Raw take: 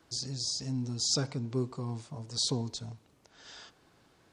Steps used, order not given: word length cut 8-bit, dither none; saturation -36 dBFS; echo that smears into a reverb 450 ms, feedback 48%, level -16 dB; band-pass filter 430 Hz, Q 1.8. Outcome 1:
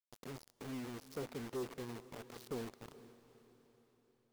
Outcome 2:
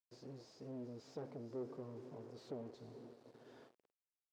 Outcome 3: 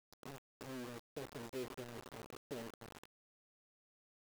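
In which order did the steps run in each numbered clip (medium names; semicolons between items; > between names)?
band-pass filter > saturation > word length cut > echo that smears into a reverb; echo that smears into a reverb > saturation > word length cut > band-pass filter; echo that smears into a reverb > saturation > band-pass filter > word length cut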